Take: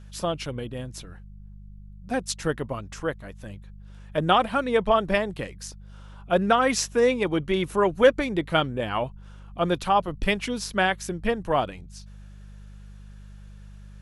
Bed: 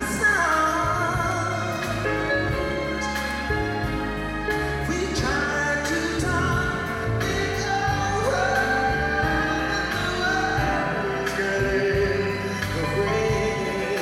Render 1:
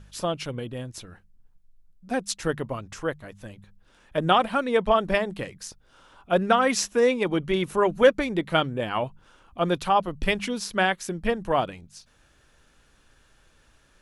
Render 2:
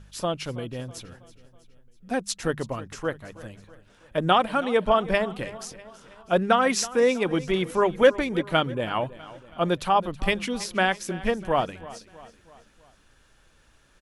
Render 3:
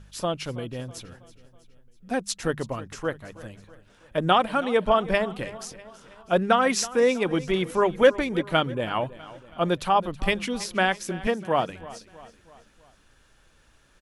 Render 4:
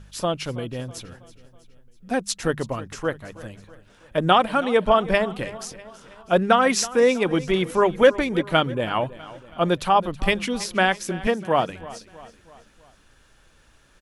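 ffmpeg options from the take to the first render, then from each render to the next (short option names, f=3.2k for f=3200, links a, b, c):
-af "bandreject=f=50:t=h:w=4,bandreject=f=100:t=h:w=4,bandreject=f=150:t=h:w=4,bandreject=f=200:t=h:w=4"
-af "aecho=1:1:324|648|972|1296:0.126|0.0642|0.0327|0.0167"
-filter_complex "[0:a]asettb=1/sr,asplit=3[a][b][c];[a]atrim=end=11.274[d];[b]atrim=start=11.27:end=11.7,asetpts=PTS-STARTPTS,afade=t=in:d=0.004:c=qsin,afade=t=out:st=0.426:d=0.004:c=qsin,highpass=f=110:w=0.5412,highpass=f=110:w=1.3066[e];[c]atrim=start=11.696[f];[d][e]acrossfade=d=0.004:c1=hsin:c2=qsin[g];[g][f]acrossfade=d=0.004:c1=qsin:c2=hsin"
-af "volume=3dB,alimiter=limit=-3dB:level=0:latency=1"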